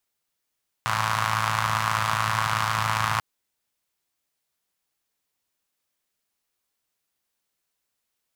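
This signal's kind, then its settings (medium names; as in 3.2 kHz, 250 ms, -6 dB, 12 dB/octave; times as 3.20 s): four-cylinder engine model, steady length 2.34 s, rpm 3300, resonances 120/1100 Hz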